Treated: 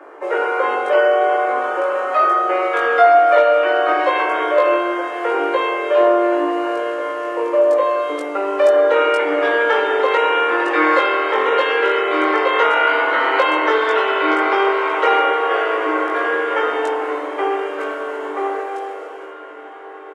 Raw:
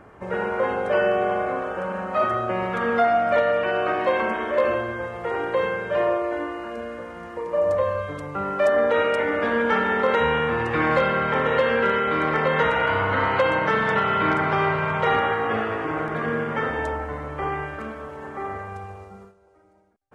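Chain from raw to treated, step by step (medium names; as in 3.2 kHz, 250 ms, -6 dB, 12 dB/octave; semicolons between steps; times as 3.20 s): steep high-pass 300 Hz 72 dB/octave; in parallel at +2.5 dB: compression, threshold -29 dBFS, peak gain reduction 13 dB; on the sum: doubling 20 ms -2 dB; echo that smears into a reverb 1403 ms, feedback 64%, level -16 dB; tape noise reduction on one side only decoder only; trim +1.5 dB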